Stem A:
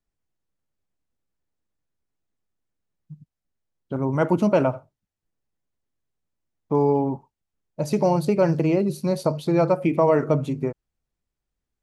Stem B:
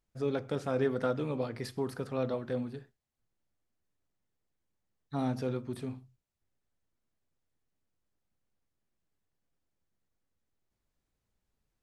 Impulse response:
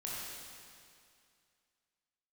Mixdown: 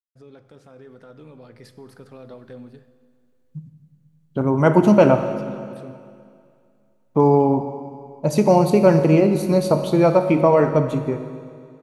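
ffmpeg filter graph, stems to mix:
-filter_complex "[0:a]bandreject=frequency=5100:width=16,adelay=450,volume=-1.5dB,asplit=2[link_01][link_02];[link_02]volume=-6dB[link_03];[1:a]agate=range=-33dB:threshold=-55dB:ratio=3:detection=peak,alimiter=level_in=3.5dB:limit=-24dB:level=0:latency=1:release=85,volume=-3.5dB,volume=-10dB,asplit=2[link_04][link_05];[link_05]volume=-13.5dB[link_06];[2:a]atrim=start_sample=2205[link_07];[link_03][link_06]amix=inputs=2:normalize=0[link_08];[link_08][link_07]afir=irnorm=-1:irlink=0[link_09];[link_01][link_04][link_09]amix=inputs=3:normalize=0,dynaudnorm=framelen=250:gausssize=17:maxgain=10.5dB"

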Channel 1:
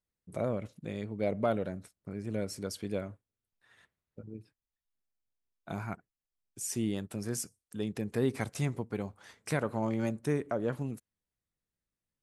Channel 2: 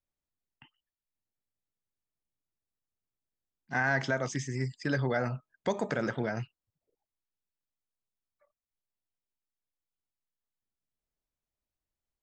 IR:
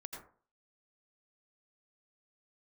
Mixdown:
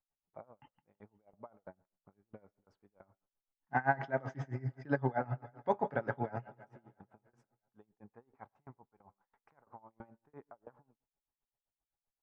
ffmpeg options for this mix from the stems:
-filter_complex "[0:a]equalizer=frequency=1100:width=0.79:gain=11.5,aeval=exprs='val(0)*pow(10,-26*if(lt(mod(3*n/s,1),2*abs(3)/1000),1-mod(3*n/s,1)/(2*abs(3)/1000),(mod(3*n/s,1)-2*abs(3)/1000)/(1-2*abs(3)/1000))/20)':channel_layout=same,volume=-14.5dB,asplit=2[link_01][link_02];[link_02]volume=-19.5dB[link_03];[1:a]aecho=1:1:7.2:0.35,volume=-1dB,asplit=2[link_04][link_05];[link_05]volume=-17dB[link_06];[2:a]atrim=start_sample=2205[link_07];[link_03][link_07]afir=irnorm=-1:irlink=0[link_08];[link_06]aecho=0:1:166|332|498|664|830|996|1162|1328|1494:1|0.59|0.348|0.205|0.121|0.0715|0.0422|0.0249|0.0147[link_09];[link_01][link_04][link_08][link_09]amix=inputs=4:normalize=0,lowpass=1700,equalizer=frequency=830:width=3.6:gain=10.5,aeval=exprs='val(0)*pow(10,-22*(0.5-0.5*cos(2*PI*7.7*n/s))/20)':channel_layout=same"

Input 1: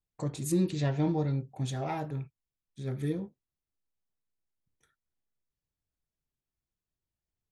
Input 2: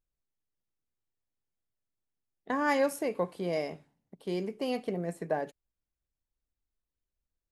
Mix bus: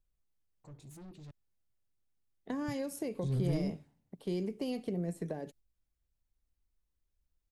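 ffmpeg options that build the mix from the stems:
ffmpeg -i stem1.wav -i stem2.wav -filter_complex "[0:a]asoftclip=type=tanh:threshold=-34dB,adelay=450,volume=2dB,asplit=3[link_01][link_02][link_03];[link_01]atrim=end=1.31,asetpts=PTS-STARTPTS,afade=type=out:start_time=1.306:duration=0.004:curve=hsin[link_04];[link_02]atrim=start=1.31:end=2.68,asetpts=PTS-STARTPTS,volume=0[link_05];[link_03]atrim=start=2.68,asetpts=PTS-STARTPTS,afade=type=in:duration=0.004:curve=hsin[link_06];[link_04][link_05][link_06]concat=n=3:v=0:a=1[link_07];[1:a]acompressor=threshold=-31dB:ratio=3,volume=-0.5dB,asplit=2[link_08][link_09];[link_09]apad=whole_len=351244[link_10];[link_07][link_10]sidechaingate=range=-19dB:threshold=-56dB:ratio=16:detection=peak[link_11];[link_11][link_08]amix=inputs=2:normalize=0,lowshelf=frequency=140:gain=9.5,acrossover=split=470|3000[link_12][link_13][link_14];[link_13]acompressor=threshold=-53dB:ratio=2.5[link_15];[link_12][link_15][link_14]amix=inputs=3:normalize=0" out.wav

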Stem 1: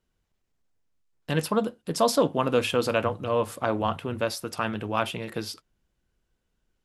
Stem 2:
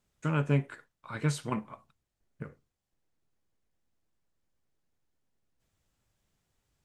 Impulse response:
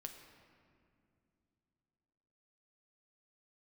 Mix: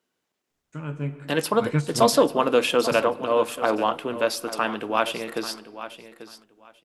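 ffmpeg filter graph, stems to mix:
-filter_complex "[0:a]highpass=300,volume=2.5dB,asplit=4[link_01][link_02][link_03][link_04];[link_02]volume=-8.5dB[link_05];[link_03]volume=-12dB[link_06];[1:a]adelay=500,volume=3dB,asplit=2[link_07][link_08];[link_08]volume=-8.5dB[link_09];[link_04]apad=whole_len=323781[link_10];[link_07][link_10]sidechaingate=range=-18dB:threshold=-41dB:ratio=16:detection=peak[link_11];[2:a]atrim=start_sample=2205[link_12];[link_05][link_09]amix=inputs=2:normalize=0[link_13];[link_13][link_12]afir=irnorm=-1:irlink=0[link_14];[link_06]aecho=0:1:840|1680|2520:1|0.17|0.0289[link_15];[link_01][link_11][link_14][link_15]amix=inputs=4:normalize=0,equalizer=frequency=270:width_type=o:width=0.81:gain=2.5"

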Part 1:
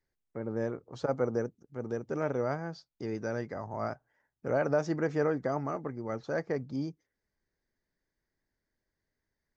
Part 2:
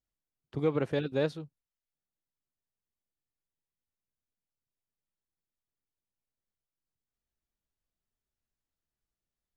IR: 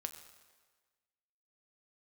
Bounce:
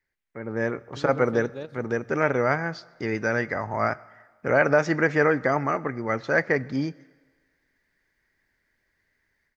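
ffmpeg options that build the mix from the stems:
-filter_complex "[0:a]equalizer=frequency=2000:width=1.1:gain=13,dynaudnorm=framelen=350:gausssize=3:maxgain=10dB,volume=-5.5dB,asplit=3[link_01][link_02][link_03];[link_02]volume=-6dB[link_04];[1:a]adelay=400,volume=-9dB,asplit=2[link_05][link_06];[link_06]volume=-10.5dB[link_07];[link_03]apad=whole_len=439546[link_08];[link_05][link_08]sidechaingate=range=-33dB:threshold=-48dB:ratio=16:detection=peak[link_09];[2:a]atrim=start_sample=2205[link_10];[link_04][link_07]amix=inputs=2:normalize=0[link_11];[link_11][link_10]afir=irnorm=-1:irlink=0[link_12];[link_01][link_09][link_12]amix=inputs=3:normalize=0"

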